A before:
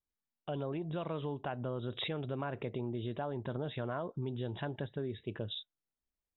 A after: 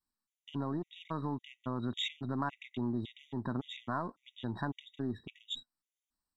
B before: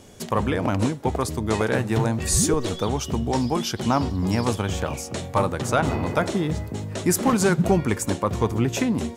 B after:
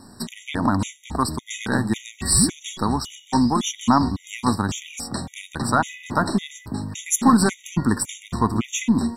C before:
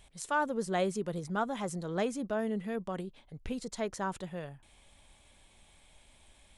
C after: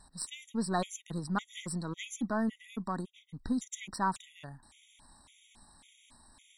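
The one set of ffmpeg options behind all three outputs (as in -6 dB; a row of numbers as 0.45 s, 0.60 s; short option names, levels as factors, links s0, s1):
-af "aeval=exprs='if(lt(val(0),0),0.708*val(0),val(0))':c=same,equalizer=f=250:t=o:w=1:g=10,equalizer=f=500:t=o:w=1:g=-10,equalizer=f=1000:t=o:w=1:g=10,equalizer=f=4000:t=o:w=1:g=5,equalizer=f=8000:t=o:w=1:g=8,afftfilt=real='re*gt(sin(2*PI*1.8*pts/sr)*(1-2*mod(floor(b*sr/1024/1900),2)),0)':imag='im*gt(sin(2*PI*1.8*pts/sr)*(1-2*mod(floor(b*sr/1024/1900),2)),0)':win_size=1024:overlap=0.75"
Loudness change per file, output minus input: 0.0 LU, +1.0 LU, -1.0 LU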